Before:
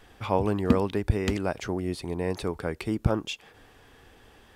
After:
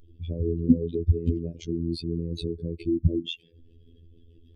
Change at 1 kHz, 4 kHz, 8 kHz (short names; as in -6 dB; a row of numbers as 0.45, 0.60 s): under -40 dB, +0.5 dB, under -10 dB